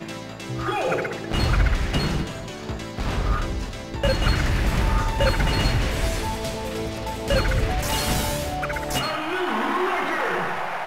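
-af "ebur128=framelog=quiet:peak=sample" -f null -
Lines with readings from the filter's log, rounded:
Integrated loudness:
  I:         -24.7 LUFS
  Threshold: -34.7 LUFS
Loudness range:
  LRA:         2.1 LU
  Threshold: -44.6 LUFS
  LRA low:   -25.8 LUFS
  LRA high:  -23.6 LUFS
Sample peak:
  Peak:       -9.2 dBFS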